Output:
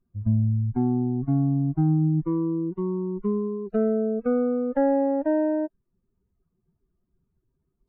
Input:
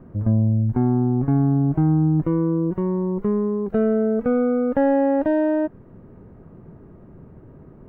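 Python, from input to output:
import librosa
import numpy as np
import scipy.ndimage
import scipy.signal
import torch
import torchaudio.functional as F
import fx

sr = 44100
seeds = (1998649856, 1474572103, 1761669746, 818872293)

y = fx.bin_expand(x, sr, power=2.0)
y = fx.env_lowpass_down(y, sr, base_hz=1600.0, full_db=-20.5)
y = F.gain(torch.from_numpy(y), -2.0).numpy()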